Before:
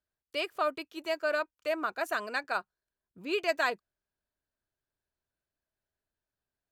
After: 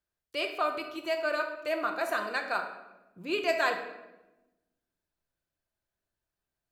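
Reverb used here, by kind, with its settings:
rectangular room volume 470 cubic metres, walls mixed, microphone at 0.84 metres

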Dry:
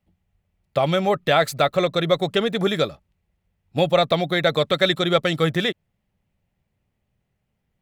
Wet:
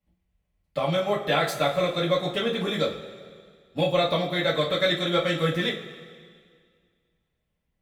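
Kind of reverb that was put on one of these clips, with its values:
coupled-rooms reverb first 0.25 s, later 2 s, from −18 dB, DRR −6 dB
level −11 dB

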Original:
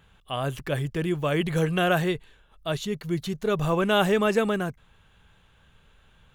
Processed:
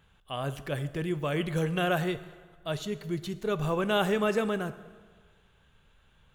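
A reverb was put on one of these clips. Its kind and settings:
dense smooth reverb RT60 1.6 s, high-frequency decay 0.75×, DRR 12.5 dB
level −5 dB

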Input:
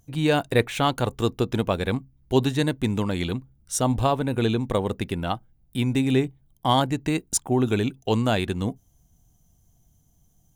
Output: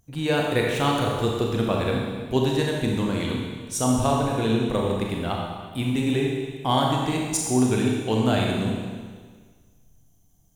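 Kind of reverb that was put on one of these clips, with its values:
four-comb reverb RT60 1.6 s, combs from 28 ms, DRR −1.5 dB
level −3 dB

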